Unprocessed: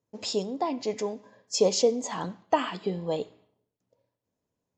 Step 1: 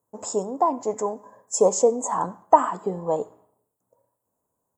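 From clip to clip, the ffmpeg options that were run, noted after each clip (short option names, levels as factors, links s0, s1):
-af "firequalizer=gain_entry='entry(200,0);entry(980,12);entry(2400,-15);entry(4400,-17);entry(7800,14)':delay=0.05:min_phase=1"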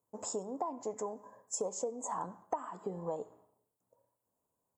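-af "acompressor=threshold=0.0398:ratio=5,volume=0.473"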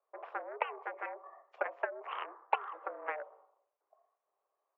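-af "aeval=exprs='0.106*(cos(1*acos(clip(val(0)/0.106,-1,1)))-cos(1*PI/2))+0.0266*(cos(7*acos(clip(val(0)/0.106,-1,1)))-cos(7*PI/2))':c=same,highpass=f=290:t=q:w=0.5412,highpass=f=290:t=q:w=1.307,lowpass=f=2500:t=q:w=0.5176,lowpass=f=2500:t=q:w=0.7071,lowpass=f=2500:t=q:w=1.932,afreqshift=140,volume=1.78"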